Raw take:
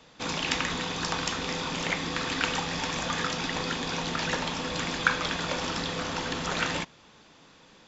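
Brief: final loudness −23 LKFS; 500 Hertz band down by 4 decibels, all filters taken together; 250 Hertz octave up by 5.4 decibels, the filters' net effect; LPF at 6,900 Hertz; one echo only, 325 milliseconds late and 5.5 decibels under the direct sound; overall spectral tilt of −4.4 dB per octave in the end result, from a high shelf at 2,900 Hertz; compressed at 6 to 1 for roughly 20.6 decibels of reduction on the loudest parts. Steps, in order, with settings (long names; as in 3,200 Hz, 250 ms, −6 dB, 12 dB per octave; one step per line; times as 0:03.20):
low-pass filter 6,900 Hz
parametric band 250 Hz +8.5 dB
parametric band 500 Hz −7 dB
high-shelf EQ 2,900 Hz −6 dB
downward compressor 6 to 1, threshold −42 dBFS
single-tap delay 325 ms −5.5 dB
level +20.5 dB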